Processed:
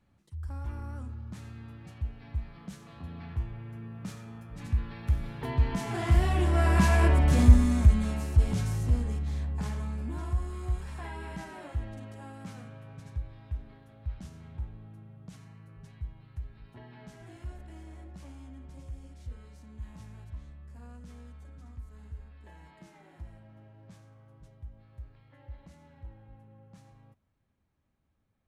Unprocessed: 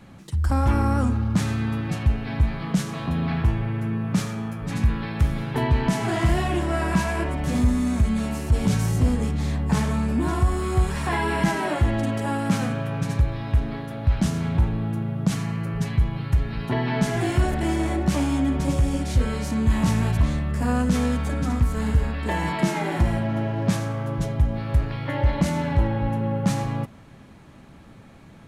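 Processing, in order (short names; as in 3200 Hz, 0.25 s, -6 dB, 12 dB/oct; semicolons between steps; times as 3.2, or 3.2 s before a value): Doppler pass-by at 7.15, 8 m/s, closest 4 m; resonant low shelf 110 Hz +6 dB, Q 1.5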